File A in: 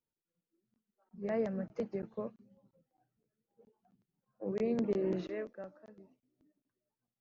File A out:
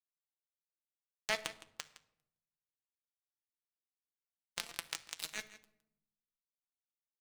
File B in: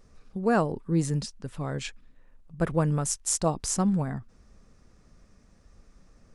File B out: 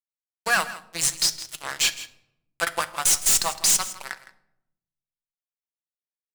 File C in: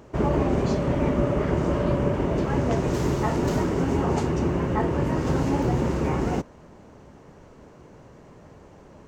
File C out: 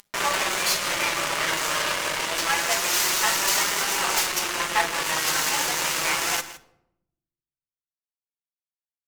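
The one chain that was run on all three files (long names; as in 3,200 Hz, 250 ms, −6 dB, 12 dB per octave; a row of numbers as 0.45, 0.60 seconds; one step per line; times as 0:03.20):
stylus tracing distortion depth 0.11 ms
high-pass filter 1,500 Hz 12 dB per octave
high-shelf EQ 2,600 Hz +10.5 dB
in parallel at +1.5 dB: downward compressor, threshold −46 dBFS
on the sum: fuzz pedal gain 30 dB, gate −37 dBFS
flanger 0.27 Hz, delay 4.9 ms, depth 1.7 ms, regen +64%
on a send: single-tap delay 162 ms −16 dB
on the sum: rectangular room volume 2,300 cubic metres, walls furnished, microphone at 0.76 metres
level +2 dB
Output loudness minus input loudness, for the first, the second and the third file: −5.0, +6.5, +2.0 LU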